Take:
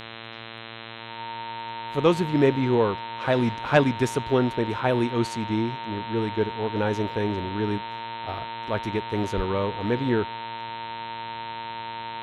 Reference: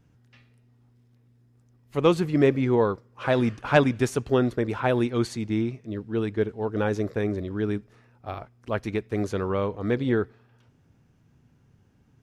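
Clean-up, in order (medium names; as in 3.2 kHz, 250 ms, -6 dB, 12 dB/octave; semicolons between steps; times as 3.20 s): de-hum 113.7 Hz, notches 36; band-stop 920 Hz, Q 30; de-plosive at 9.36 s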